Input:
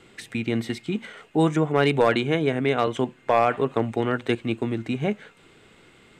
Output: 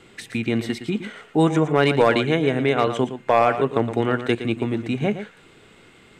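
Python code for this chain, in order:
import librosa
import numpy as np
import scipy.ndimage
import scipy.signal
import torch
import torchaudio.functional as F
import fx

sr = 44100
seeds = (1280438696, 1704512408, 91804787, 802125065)

y = x + 10.0 ** (-11.0 / 20.0) * np.pad(x, (int(115 * sr / 1000.0), 0))[:len(x)]
y = y * librosa.db_to_amplitude(2.5)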